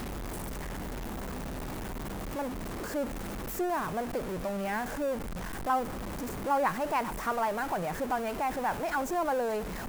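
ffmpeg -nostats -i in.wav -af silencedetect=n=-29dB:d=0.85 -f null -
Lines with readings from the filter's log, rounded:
silence_start: 0.00
silence_end: 2.38 | silence_duration: 2.38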